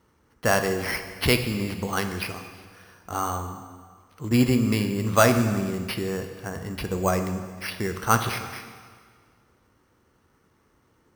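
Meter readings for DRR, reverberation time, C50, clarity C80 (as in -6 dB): 6.5 dB, 1.8 s, 8.5 dB, 10.0 dB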